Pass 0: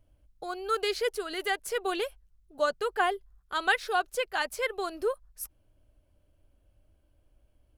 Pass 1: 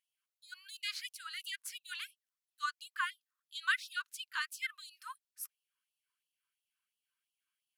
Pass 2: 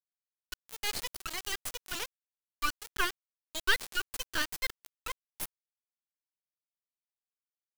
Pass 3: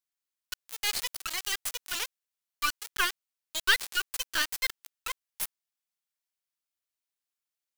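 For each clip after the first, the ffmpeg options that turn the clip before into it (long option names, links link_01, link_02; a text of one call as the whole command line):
ffmpeg -i in.wav -af "afftfilt=real='re*gte(b*sr/1024,930*pow(2600/930,0.5+0.5*sin(2*PI*2.9*pts/sr)))':imag='im*gte(b*sr/1024,930*pow(2600/930,0.5+0.5*sin(2*PI*2.9*pts/sr)))':win_size=1024:overlap=0.75,volume=-5dB" out.wav
ffmpeg -i in.wav -af "acrusher=bits=4:dc=4:mix=0:aa=0.000001,volume=8.5dB" out.wav
ffmpeg -i in.wav -af "tiltshelf=frequency=740:gain=-5.5" out.wav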